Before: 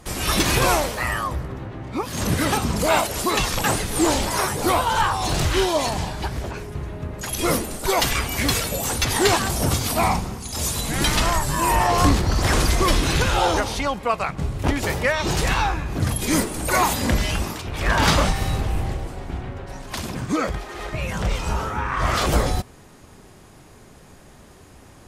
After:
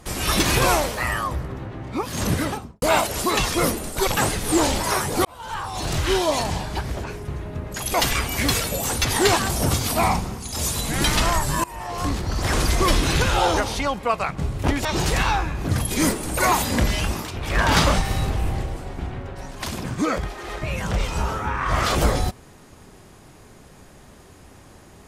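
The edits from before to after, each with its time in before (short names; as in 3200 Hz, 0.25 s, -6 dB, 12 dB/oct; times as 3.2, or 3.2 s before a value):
2.26–2.82 studio fade out
4.72–5.68 fade in
7.41–7.94 move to 3.54
11.64–12.86 fade in, from -23.5 dB
14.85–15.16 cut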